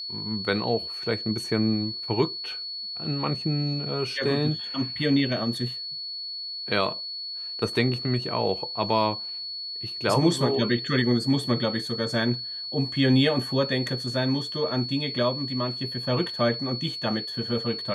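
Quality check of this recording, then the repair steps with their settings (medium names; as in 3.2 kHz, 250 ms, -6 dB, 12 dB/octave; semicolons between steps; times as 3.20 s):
whine 4.4 kHz -32 dBFS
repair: band-stop 4.4 kHz, Q 30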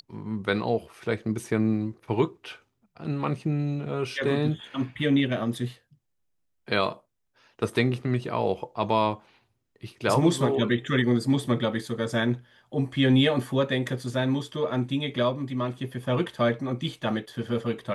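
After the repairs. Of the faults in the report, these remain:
nothing left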